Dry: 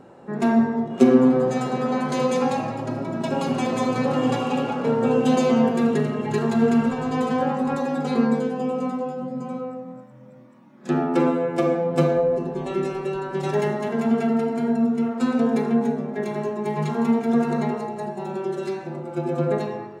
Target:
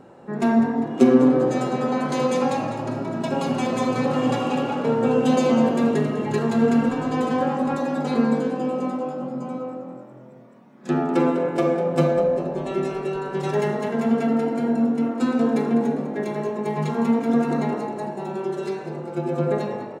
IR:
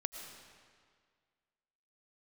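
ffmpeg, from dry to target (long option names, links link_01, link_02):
-filter_complex "[0:a]asplit=6[link_01][link_02][link_03][link_04][link_05][link_06];[link_02]adelay=200,afreqshift=45,volume=-13.5dB[link_07];[link_03]adelay=400,afreqshift=90,volume=-19.2dB[link_08];[link_04]adelay=600,afreqshift=135,volume=-24.9dB[link_09];[link_05]adelay=800,afreqshift=180,volume=-30.5dB[link_10];[link_06]adelay=1000,afreqshift=225,volume=-36.2dB[link_11];[link_01][link_07][link_08][link_09][link_10][link_11]amix=inputs=6:normalize=0"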